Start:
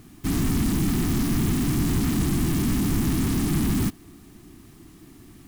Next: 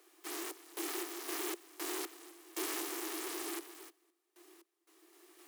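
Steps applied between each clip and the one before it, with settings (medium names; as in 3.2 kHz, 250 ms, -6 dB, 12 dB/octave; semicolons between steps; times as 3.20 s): random-step tremolo 3.9 Hz, depth 95%; steep high-pass 330 Hz 96 dB/octave; trim -3.5 dB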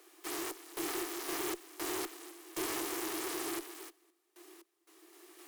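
valve stage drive 34 dB, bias 0.25; trim +5 dB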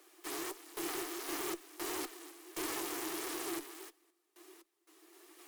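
flange 1.5 Hz, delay 3.2 ms, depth 4.3 ms, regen +56%; trim +2.5 dB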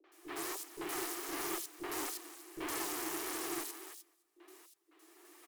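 three bands offset in time lows, mids, highs 40/120 ms, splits 410/3500 Hz; trim +1.5 dB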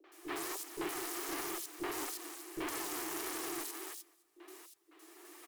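peak limiter -33 dBFS, peak gain reduction 8.5 dB; trim +4.5 dB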